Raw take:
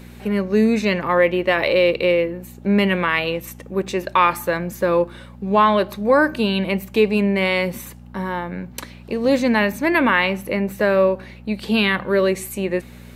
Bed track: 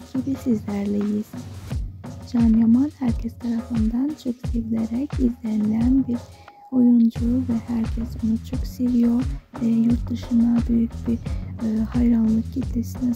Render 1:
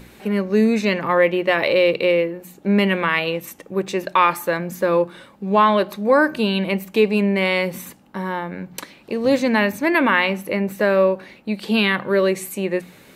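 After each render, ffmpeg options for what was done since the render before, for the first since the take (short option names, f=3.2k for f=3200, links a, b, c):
-af "bandreject=f=60:t=h:w=4,bandreject=f=120:t=h:w=4,bandreject=f=180:t=h:w=4,bandreject=f=240:t=h:w=4"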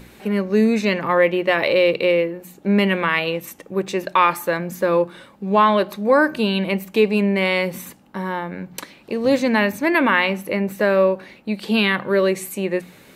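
-af anull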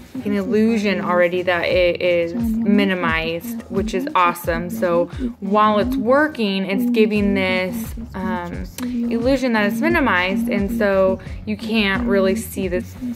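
-filter_complex "[1:a]volume=-4dB[a];[0:a][a]amix=inputs=2:normalize=0"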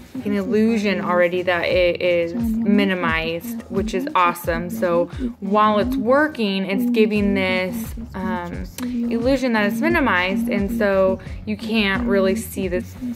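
-af "volume=-1dB"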